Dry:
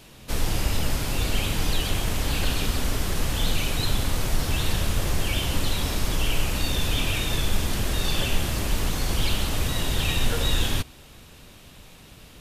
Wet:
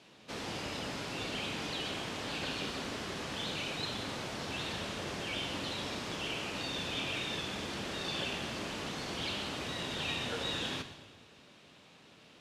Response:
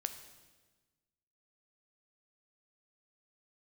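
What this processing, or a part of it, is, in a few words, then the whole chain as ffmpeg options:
supermarket ceiling speaker: -filter_complex "[0:a]highpass=200,lowpass=5.2k[a];[1:a]atrim=start_sample=2205[b];[a][b]afir=irnorm=-1:irlink=0,volume=-6.5dB"

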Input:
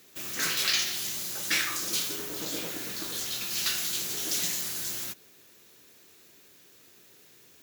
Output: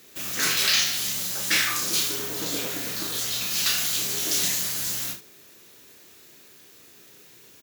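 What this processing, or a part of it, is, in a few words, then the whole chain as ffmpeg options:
slapback doubling: -filter_complex "[0:a]asplit=3[a][b][c];[b]adelay=32,volume=-5dB[d];[c]adelay=74,volume=-11.5dB[e];[a][d][e]amix=inputs=3:normalize=0,volume=4dB"

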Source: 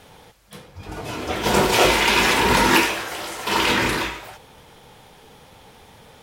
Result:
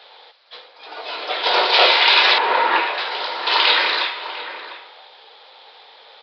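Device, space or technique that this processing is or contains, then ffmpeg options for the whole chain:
musical greeting card: -filter_complex "[0:a]asettb=1/sr,asplit=3[a][b][c];[a]atrim=end=2.384[d];[b]atrim=start=2.38:end=2.98,asetpts=PTS-STARTPTS,afade=t=in:d=0.004:c=qsin,afade=t=out:st=0.596:d=0.004:c=qsin,lowpass=1.6k[e];[c]atrim=start=2.976[f];[d][e]acrossfade=d=0.004:c1=hsin:c2=qsin[g];[g][f]acrossfade=d=0.004:c1=qsin:c2=hsin,asplit=2[h][i];[i]adelay=699.7,volume=-11dB,highshelf=f=4k:g=-15.7[j];[h][j]amix=inputs=2:normalize=0,aresample=11025,aresample=44100,highpass=f=510:w=0.5412,highpass=f=510:w=1.3066,equalizer=f=3.9k:t=o:w=0.52:g=9,volume=2.5dB"

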